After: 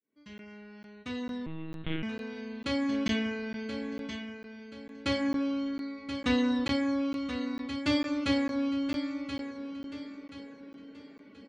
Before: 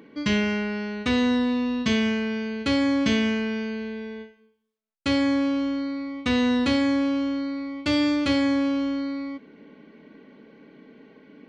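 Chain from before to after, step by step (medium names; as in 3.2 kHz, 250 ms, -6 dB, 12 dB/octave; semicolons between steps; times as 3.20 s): fade-in on the opening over 3.60 s; reverb removal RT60 0.69 s; flange 0.3 Hz, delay 2.5 ms, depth 7.2 ms, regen -64%; feedback delay 1029 ms, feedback 35%, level -9.5 dB; 1.46–2.03 s: monotone LPC vocoder at 8 kHz 160 Hz; crackling interface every 0.45 s, samples 512, zero, from 0.38 s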